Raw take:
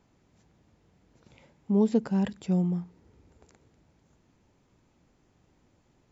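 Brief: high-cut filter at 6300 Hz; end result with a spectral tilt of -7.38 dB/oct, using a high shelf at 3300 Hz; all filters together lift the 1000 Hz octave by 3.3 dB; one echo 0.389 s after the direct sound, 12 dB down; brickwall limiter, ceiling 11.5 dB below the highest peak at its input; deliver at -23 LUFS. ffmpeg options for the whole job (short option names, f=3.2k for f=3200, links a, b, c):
-af "lowpass=6.3k,equalizer=f=1k:t=o:g=5,highshelf=f=3.3k:g=-8.5,alimiter=limit=-24dB:level=0:latency=1,aecho=1:1:389:0.251,volume=10.5dB"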